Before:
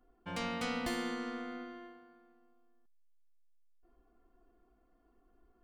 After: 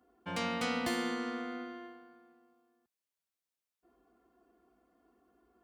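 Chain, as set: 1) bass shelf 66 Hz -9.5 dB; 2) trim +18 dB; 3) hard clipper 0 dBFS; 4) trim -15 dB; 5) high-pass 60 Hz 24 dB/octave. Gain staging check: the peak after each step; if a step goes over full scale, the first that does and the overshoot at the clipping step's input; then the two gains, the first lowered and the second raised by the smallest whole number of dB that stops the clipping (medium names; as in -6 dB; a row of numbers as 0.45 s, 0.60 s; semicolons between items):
-23.5 dBFS, -5.5 dBFS, -5.5 dBFS, -20.5 dBFS, -21.0 dBFS; nothing clips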